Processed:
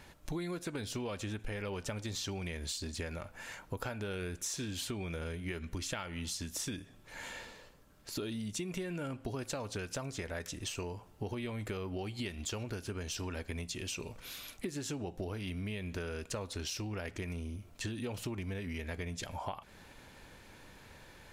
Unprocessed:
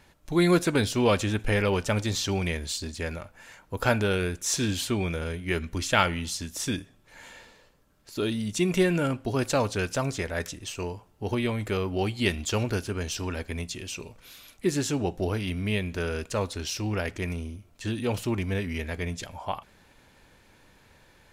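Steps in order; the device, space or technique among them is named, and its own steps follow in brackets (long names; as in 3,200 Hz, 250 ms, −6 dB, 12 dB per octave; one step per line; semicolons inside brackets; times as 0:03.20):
serial compression, leveller first (downward compressor 2.5 to 1, threshold −28 dBFS, peak gain reduction 8.5 dB; downward compressor 6 to 1, threshold −39 dBFS, peak gain reduction 14.5 dB)
level +2.5 dB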